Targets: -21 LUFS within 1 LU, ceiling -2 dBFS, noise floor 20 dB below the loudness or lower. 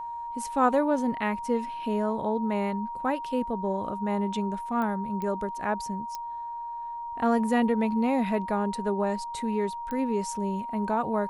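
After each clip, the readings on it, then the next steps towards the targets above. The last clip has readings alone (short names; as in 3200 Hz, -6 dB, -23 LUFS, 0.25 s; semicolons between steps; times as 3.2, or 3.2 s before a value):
clicks 4; steady tone 940 Hz; tone level -33 dBFS; loudness -28.5 LUFS; peak -10.0 dBFS; loudness target -21.0 LUFS
-> de-click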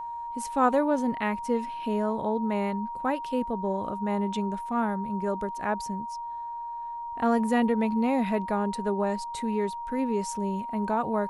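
clicks 0; steady tone 940 Hz; tone level -33 dBFS
-> notch 940 Hz, Q 30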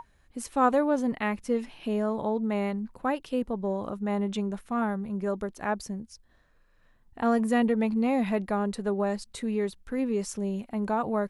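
steady tone none; loudness -29.0 LUFS; peak -11.0 dBFS; loudness target -21.0 LUFS
-> gain +8 dB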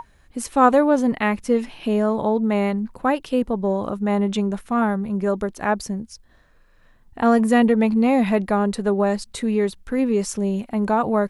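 loudness -21.0 LUFS; peak -3.0 dBFS; noise floor -55 dBFS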